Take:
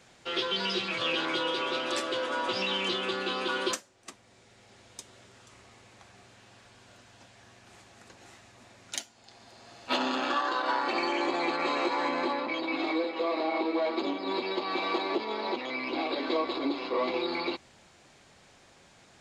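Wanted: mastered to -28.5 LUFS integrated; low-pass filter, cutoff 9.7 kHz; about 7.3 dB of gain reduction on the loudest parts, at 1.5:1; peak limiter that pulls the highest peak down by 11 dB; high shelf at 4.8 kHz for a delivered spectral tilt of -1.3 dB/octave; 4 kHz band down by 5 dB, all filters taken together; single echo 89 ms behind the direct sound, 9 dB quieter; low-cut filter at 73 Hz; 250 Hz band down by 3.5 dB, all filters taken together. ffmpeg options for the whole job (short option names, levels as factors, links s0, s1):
-af "highpass=73,lowpass=9700,equalizer=f=250:t=o:g=-5,equalizer=f=4000:t=o:g=-3,highshelf=f=4800:g=-8,acompressor=threshold=0.00447:ratio=1.5,alimiter=level_in=3.98:limit=0.0631:level=0:latency=1,volume=0.251,aecho=1:1:89:0.355,volume=5.96"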